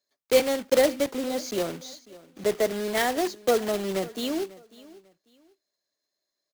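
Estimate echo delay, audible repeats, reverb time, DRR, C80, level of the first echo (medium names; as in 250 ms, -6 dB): 545 ms, 2, no reverb, no reverb, no reverb, -20.5 dB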